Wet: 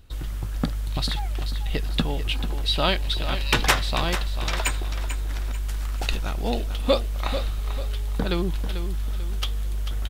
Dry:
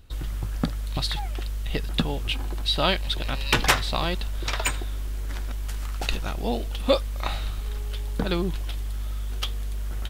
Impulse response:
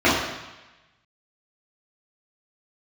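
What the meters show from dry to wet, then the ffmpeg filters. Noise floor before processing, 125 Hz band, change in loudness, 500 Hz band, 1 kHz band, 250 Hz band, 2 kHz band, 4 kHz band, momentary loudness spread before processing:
−30 dBFS, +2.0 dB, +1.0 dB, +0.5 dB, +0.5 dB, +0.5 dB, +0.5 dB, +0.5 dB, 10 LU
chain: -af "aecho=1:1:442|884|1326|1768:0.316|0.12|0.0457|0.0174"

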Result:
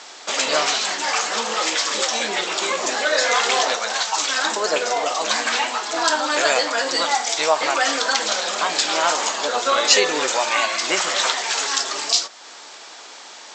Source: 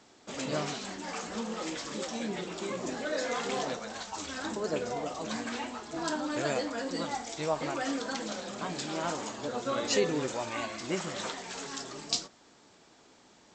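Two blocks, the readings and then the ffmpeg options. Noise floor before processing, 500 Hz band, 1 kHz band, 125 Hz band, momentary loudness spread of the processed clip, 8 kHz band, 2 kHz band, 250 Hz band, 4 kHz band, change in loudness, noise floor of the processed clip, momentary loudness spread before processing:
−60 dBFS, +10.0 dB, +15.5 dB, can't be measured, 4 LU, +17.5 dB, +17.5 dB, +1.0 dB, +18.5 dB, +15.0 dB, −40 dBFS, 7 LU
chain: -filter_complex "[0:a]crystalizer=i=1.5:c=0,highpass=710,lowpass=5800,asplit=2[link_01][link_02];[link_02]acompressor=threshold=-44dB:ratio=6,volume=1dB[link_03];[link_01][link_03]amix=inputs=2:normalize=0,alimiter=level_in=15dB:limit=-1dB:release=50:level=0:latency=1,volume=-1dB"

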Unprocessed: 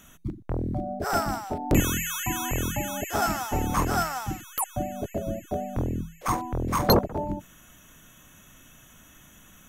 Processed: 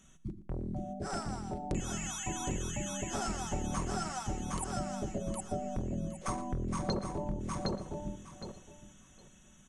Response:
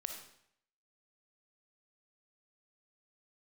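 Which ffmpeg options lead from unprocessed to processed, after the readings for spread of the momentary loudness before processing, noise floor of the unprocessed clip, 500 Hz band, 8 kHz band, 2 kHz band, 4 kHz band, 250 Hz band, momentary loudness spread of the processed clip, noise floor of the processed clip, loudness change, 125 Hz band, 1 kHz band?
9 LU, −54 dBFS, −9.5 dB, −6.5 dB, −12.0 dB, −10.0 dB, −7.5 dB, 10 LU, −59 dBFS, −9.5 dB, −8.0 dB, −10.5 dB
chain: -filter_complex "[0:a]equalizer=frequency=1300:width=0.36:gain=-7,aecho=1:1:5.3:0.37,dynaudnorm=framelen=660:gausssize=7:maxgain=4.5dB,asplit=2[link_01][link_02];[link_02]aecho=0:1:763|1526|2289:0.562|0.09|0.0144[link_03];[link_01][link_03]amix=inputs=2:normalize=0,acompressor=threshold=-25dB:ratio=4,aresample=22050,aresample=44100,asplit=2[link_04][link_05];[link_05]adelay=116.6,volume=-16dB,highshelf=frequency=4000:gain=-2.62[link_06];[link_04][link_06]amix=inputs=2:normalize=0,asplit=2[link_07][link_08];[1:a]atrim=start_sample=2205[link_09];[link_08][link_09]afir=irnorm=-1:irlink=0,volume=-15.5dB[link_10];[link_07][link_10]amix=inputs=2:normalize=0,volume=-7.5dB"

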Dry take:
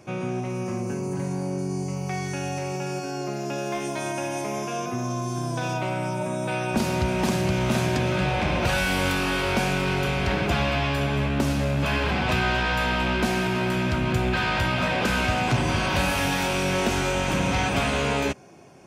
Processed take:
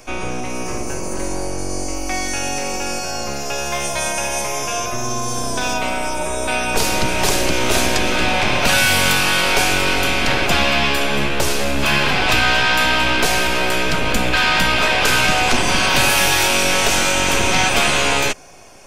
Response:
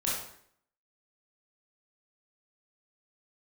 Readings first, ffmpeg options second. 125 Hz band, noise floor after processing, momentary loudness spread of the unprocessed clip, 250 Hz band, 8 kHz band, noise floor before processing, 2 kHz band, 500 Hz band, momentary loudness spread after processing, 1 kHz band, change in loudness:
−1.5 dB, −24 dBFS, 7 LU, +1.5 dB, +15.0 dB, −31 dBFS, +10.0 dB, +5.0 dB, 11 LU, +7.5 dB, +8.0 dB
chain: -filter_complex "[0:a]highshelf=frequency=2900:gain=9.5,acrossover=split=440|1400[link_01][link_02][link_03];[link_01]aeval=exprs='abs(val(0))':channel_layout=same[link_04];[link_04][link_02][link_03]amix=inputs=3:normalize=0,volume=7dB"

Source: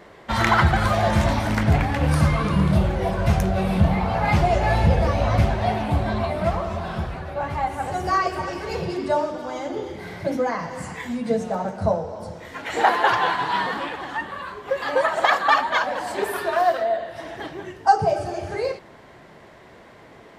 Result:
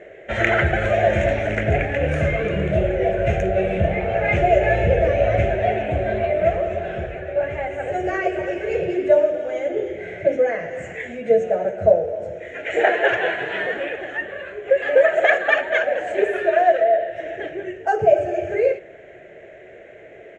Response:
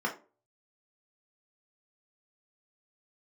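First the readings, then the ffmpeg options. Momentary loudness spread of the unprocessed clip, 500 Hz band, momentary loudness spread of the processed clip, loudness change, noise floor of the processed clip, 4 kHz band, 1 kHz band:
11 LU, +7.5 dB, 11 LU, +2.0 dB, −43 dBFS, −4.5 dB, −3.0 dB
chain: -filter_complex "[0:a]firequalizer=gain_entry='entry(120,0);entry(240,-6);entry(370,11);entry(630,13);entry(980,-16);entry(1600,8);entry(2500,9);entry(4700,-20);entry(6700,0);entry(11000,-27)':delay=0.05:min_phase=1,asplit=2[link_01][link_02];[1:a]atrim=start_sample=2205[link_03];[link_02][link_03]afir=irnorm=-1:irlink=0,volume=-22.5dB[link_04];[link_01][link_04]amix=inputs=2:normalize=0,volume=-3.5dB"

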